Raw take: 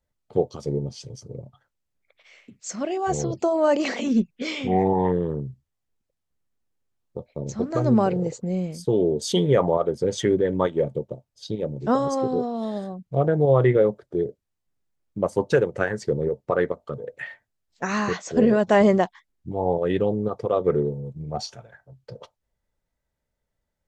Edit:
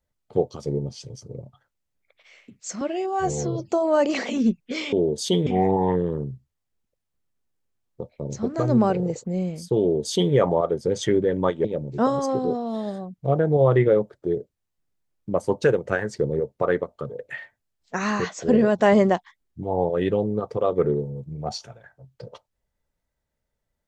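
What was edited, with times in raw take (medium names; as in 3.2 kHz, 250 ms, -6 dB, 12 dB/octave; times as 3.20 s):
2.81–3.40 s: stretch 1.5×
8.96–9.50 s: copy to 4.63 s
10.81–11.53 s: delete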